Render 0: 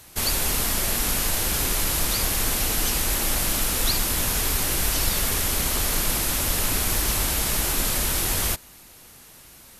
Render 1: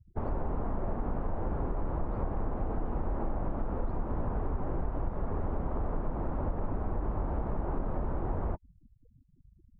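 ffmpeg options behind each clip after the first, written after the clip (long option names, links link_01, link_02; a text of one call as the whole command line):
ffmpeg -i in.wav -af "afftfilt=real='re*gte(hypot(re,im),0.0112)':imag='im*gte(hypot(re,im),0.0112)':win_size=1024:overlap=0.75,lowpass=frequency=1000:width=0.5412,lowpass=frequency=1000:width=1.3066,acompressor=threshold=-27dB:ratio=6" out.wav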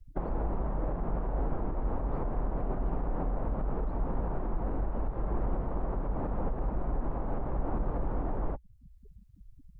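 ffmpeg -i in.wav -af "alimiter=level_in=6dB:limit=-24dB:level=0:latency=1:release=475,volume=-6dB,afreqshift=-63,volume=8dB" out.wav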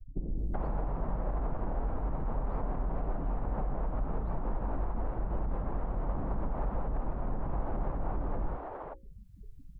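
ffmpeg -i in.wav -filter_complex "[0:a]acompressor=threshold=-32dB:ratio=6,bandreject=frequency=60:width_type=h:width=6,bandreject=frequency=120:width_type=h:width=6,bandreject=frequency=180:width_type=h:width=6,bandreject=frequency=240:width_type=h:width=6,bandreject=frequency=300:width_type=h:width=6,bandreject=frequency=360:width_type=h:width=6,bandreject=frequency=420:width_type=h:width=6,bandreject=frequency=480:width_type=h:width=6,bandreject=frequency=540:width_type=h:width=6,acrossover=split=360[link_01][link_02];[link_02]adelay=380[link_03];[link_01][link_03]amix=inputs=2:normalize=0,volume=4.5dB" out.wav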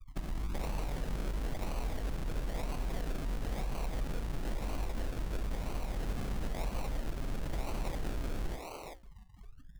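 ffmpeg -i in.wav -af "acrusher=samples=36:mix=1:aa=0.000001:lfo=1:lforange=21.6:lforate=1,volume=-3dB" out.wav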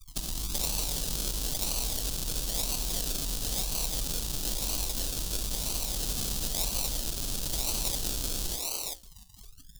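ffmpeg -i in.wav -af "aexciter=amount=6.5:drive=8.4:freq=3100" out.wav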